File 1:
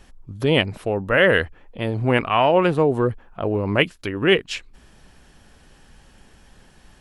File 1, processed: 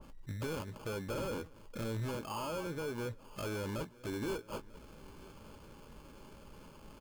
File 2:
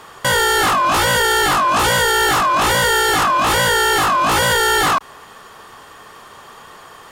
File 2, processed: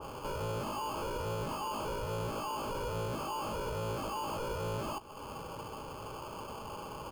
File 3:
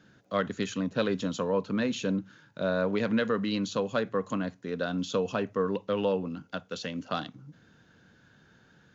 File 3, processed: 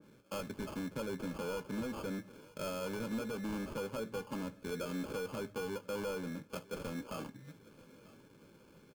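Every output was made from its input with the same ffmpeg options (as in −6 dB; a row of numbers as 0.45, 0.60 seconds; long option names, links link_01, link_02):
-filter_complex "[0:a]lowpass=4300,lowshelf=frequency=130:gain=-7,acompressor=threshold=-30dB:ratio=6,aresample=16000,asoftclip=type=tanh:threshold=-34dB,aresample=44100,acrusher=samples=23:mix=1:aa=0.000001,asuperstop=centerf=720:order=4:qfactor=5.2,asplit=2[link_01][link_02];[link_02]adelay=18,volume=-13dB[link_03];[link_01][link_03]amix=inputs=2:normalize=0,asplit=2[link_04][link_05];[link_05]aecho=0:1:943|1886|2829|3772:0.075|0.0397|0.0211|0.0112[link_06];[link_04][link_06]amix=inputs=2:normalize=0,adynamicequalizer=threshold=0.00224:dfrequency=1700:dqfactor=0.7:tfrequency=1700:tqfactor=0.7:attack=5:release=100:ratio=0.375:range=2.5:mode=cutabove:tftype=highshelf"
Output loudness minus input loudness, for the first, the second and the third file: −20.0, −24.0, −10.0 LU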